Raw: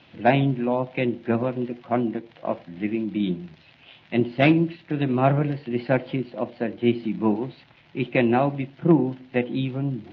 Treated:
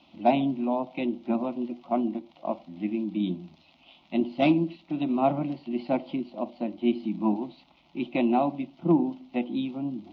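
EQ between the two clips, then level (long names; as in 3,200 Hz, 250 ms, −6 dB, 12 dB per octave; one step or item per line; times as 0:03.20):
phaser with its sweep stopped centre 450 Hz, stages 6
−1.5 dB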